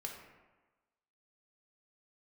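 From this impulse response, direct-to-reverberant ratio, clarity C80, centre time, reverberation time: 0.0 dB, 6.5 dB, 43 ms, 1.2 s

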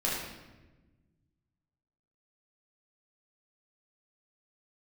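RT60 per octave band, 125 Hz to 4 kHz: 2.3 s, 1.9 s, 1.3 s, 1.0 s, 1.0 s, 0.85 s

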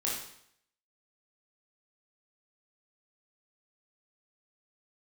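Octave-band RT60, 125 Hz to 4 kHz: 0.70 s, 0.65 s, 0.70 s, 0.70 s, 0.70 s, 0.65 s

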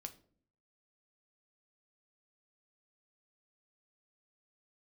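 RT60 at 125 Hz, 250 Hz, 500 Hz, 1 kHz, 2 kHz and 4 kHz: 0.80 s, 0.75 s, 0.65 s, 0.40 s, 0.35 s, 0.30 s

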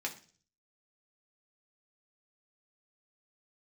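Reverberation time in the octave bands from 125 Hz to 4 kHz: 0.75 s, 0.55 s, 0.45 s, 0.35 s, 0.40 s, 0.50 s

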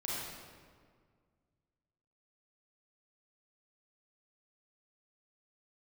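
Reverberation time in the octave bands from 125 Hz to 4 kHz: 2.6 s, 2.2 s, 2.0 s, 1.8 s, 1.5 s, 1.2 s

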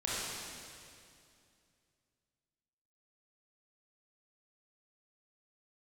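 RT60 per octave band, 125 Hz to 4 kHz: 3.0 s, 2.9 s, 2.5 s, 2.3 s, 2.3 s, 2.3 s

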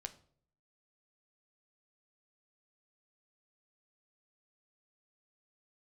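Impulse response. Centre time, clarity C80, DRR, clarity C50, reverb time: 6 ms, 20.0 dB, 7.5 dB, 16.0 dB, 0.55 s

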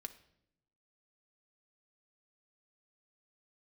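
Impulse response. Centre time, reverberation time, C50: 5 ms, 0.75 s, 14.0 dB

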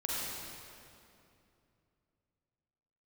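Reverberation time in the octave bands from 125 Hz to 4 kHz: 3.7 s, 3.2 s, 2.9 s, 2.5 s, 2.3 s, 2.0 s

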